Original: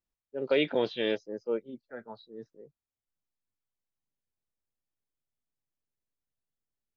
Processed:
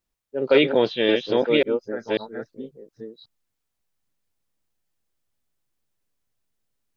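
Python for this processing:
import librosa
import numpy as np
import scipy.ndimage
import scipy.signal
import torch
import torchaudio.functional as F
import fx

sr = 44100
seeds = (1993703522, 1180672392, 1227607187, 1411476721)

y = fx.reverse_delay(x, sr, ms=543, wet_db=-2.0)
y = y * librosa.db_to_amplitude(8.5)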